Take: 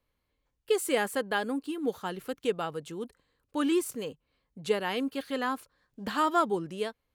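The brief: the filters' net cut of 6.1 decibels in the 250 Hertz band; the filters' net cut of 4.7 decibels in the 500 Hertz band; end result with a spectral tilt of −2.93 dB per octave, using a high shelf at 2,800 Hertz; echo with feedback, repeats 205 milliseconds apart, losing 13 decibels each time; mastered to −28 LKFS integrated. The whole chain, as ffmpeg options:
ffmpeg -i in.wav -af "equalizer=frequency=250:width_type=o:gain=-6.5,equalizer=frequency=500:width_type=o:gain=-4,highshelf=frequency=2800:gain=6,aecho=1:1:205|410|615:0.224|0.0493|0.0108,volume=4.5dB" out.wav

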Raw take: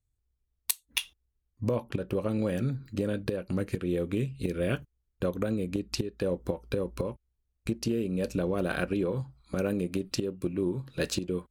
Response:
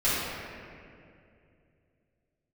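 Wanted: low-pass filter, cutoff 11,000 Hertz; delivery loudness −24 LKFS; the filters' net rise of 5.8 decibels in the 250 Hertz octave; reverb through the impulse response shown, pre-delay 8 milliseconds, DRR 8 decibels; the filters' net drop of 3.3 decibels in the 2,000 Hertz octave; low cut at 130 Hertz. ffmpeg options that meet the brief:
-filter_complex "[0:a]highpass=130,lowpass=11000,equalizer=frequency=250:width_type=o:gain=8.5,equalizer=frequency=2000:width_type=o:gain=-5,asplit=2[link_01][link_02];[1:a]atrim=start_sample=2205,adelay=8[link_03];[link_02][link_03]afir=irnorm=-1:irlink=0,volume=-22dB[link_04];[link_01][link_04]amix=inputs=2:normalize=0,volume=3.5dB"

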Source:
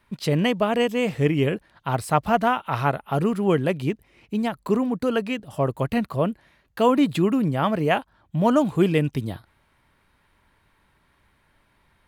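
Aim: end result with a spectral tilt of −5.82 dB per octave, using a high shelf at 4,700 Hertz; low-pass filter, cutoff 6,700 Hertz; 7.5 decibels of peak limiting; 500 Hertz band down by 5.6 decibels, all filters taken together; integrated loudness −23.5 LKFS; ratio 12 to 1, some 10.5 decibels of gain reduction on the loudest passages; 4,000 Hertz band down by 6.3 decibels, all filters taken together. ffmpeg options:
ffmpeg -i in.wav -af "lowpass=6700,equalizer=frequency=500:width_type=o:gain=-7,equalizer=frequency=4000:width_type=o:gain=-8,highshelf=frequency=4700:gain=-3.5,acompressor=threshold=-27dB:ratio=12,volume=11dB,alimiter=limit=-14dB:level=0:latency=1" out.wav

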